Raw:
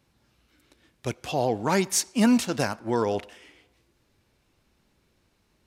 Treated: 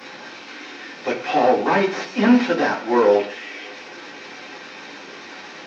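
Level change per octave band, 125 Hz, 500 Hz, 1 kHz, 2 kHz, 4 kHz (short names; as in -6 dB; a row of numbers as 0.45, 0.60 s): -2.5, +9.5, +9.5, +10.5, +3.5 dB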